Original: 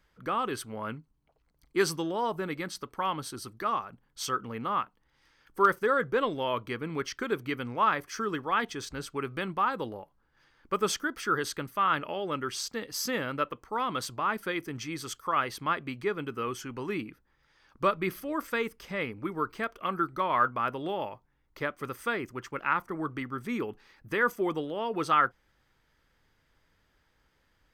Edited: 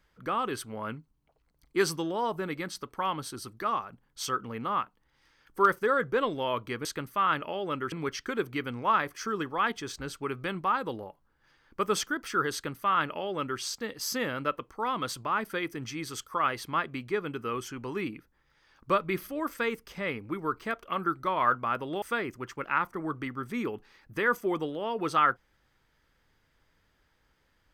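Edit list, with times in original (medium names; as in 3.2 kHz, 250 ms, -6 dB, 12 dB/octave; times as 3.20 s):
11.46–12.53 s: copy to 6.85 s
20.95–21.97 s: delete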